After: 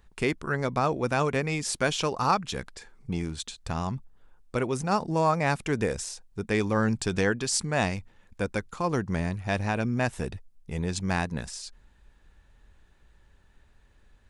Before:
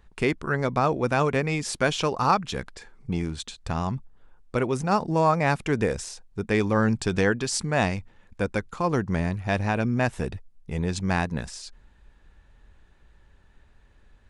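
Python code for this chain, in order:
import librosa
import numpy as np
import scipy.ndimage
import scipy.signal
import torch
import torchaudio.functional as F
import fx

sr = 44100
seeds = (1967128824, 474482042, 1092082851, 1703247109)

y = fx.high_shelf(x, sr, hz=5200.0, db=6.5)
y = y * 10.0 ** (-3.0 / 20.0)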